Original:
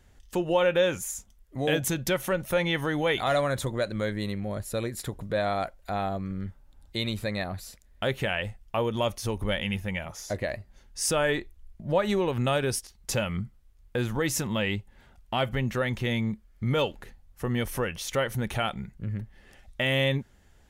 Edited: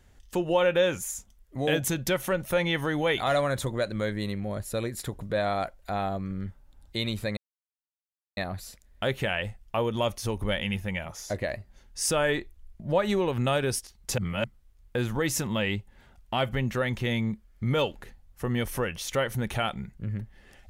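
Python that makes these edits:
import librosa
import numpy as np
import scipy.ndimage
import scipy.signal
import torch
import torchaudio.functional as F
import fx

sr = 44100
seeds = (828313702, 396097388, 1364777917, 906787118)

y = fx.edit(x, sr, fx.insert_silence(at_s=7.37, length_s=1.0),
    fx.reverse_span(start_s=13.18, length_s=0.26), tone=tone)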